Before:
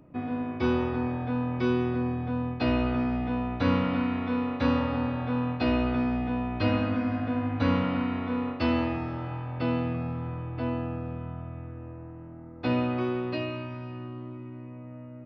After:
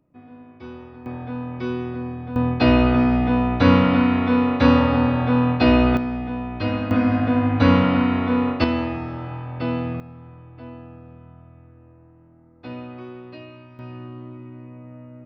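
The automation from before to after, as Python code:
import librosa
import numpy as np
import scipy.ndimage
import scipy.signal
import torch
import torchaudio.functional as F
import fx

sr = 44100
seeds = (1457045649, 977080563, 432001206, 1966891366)

y = fx.gain(x, sr, db=fx.steps((0.0, -12.5), (1.06, -1.0), (2.36, 10.0), (5.97, 1.5), (6.91, 9.5), (8.64, 3.0), (10.0, -8.5), (13.79, 2.0)))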